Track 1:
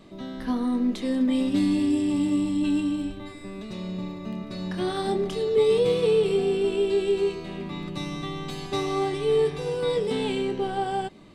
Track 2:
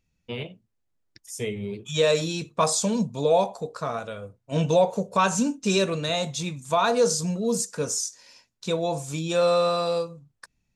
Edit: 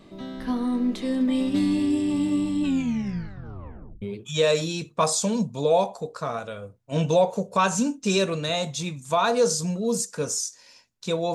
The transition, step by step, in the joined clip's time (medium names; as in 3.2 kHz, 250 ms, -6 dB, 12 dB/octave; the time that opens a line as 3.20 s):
track 1
2.62 s: tape stop 1.40 s
4.02 s: go over to track 2 from 1.62 s